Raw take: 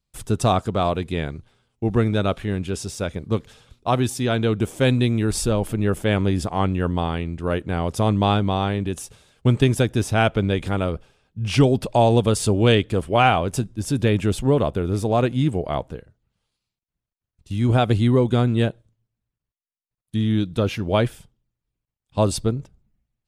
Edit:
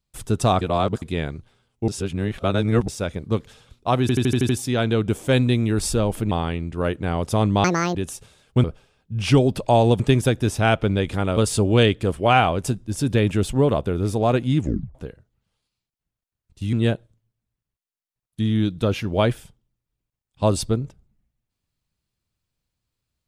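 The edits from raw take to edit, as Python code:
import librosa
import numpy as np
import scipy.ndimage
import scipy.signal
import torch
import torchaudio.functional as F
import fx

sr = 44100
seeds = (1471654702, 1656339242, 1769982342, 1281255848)

y = fx.edit(x, sr, fx.reverse_span(start_s=0.61, length_s=0.41),
    fx.reverse_span(start_s=1.88, length_s=1.0),
    fx.stutter(start_s=4.01, slice_s=0.08, count=7),
    fx.cut(start_s=5.83, length_s=1.14),
    fx.speed_span(start_s=8.3, length_s=0.54, speed=1.75),
    fx.move(start_s=10.9, length_s=1.36, to_s=9.53),
    fx.tape_stop(start_s=15.47, length_s=0.37),
    fx.cut(start_s=17.62, length_s=0.86), tone=tone)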